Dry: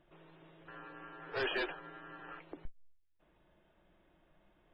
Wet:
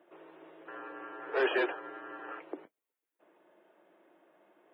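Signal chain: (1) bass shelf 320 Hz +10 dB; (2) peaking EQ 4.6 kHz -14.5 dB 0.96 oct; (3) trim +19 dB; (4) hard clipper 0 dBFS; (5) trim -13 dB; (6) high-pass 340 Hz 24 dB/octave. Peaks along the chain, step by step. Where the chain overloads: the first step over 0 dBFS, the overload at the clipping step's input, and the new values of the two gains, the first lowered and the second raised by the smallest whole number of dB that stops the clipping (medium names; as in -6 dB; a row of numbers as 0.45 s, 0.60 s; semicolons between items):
-22.5 dBFS, -23.0 dBFS, -4.0 dBFS, -4.0 dBFS, -17.0 dBFS, -17.5 dBFS; nothing clips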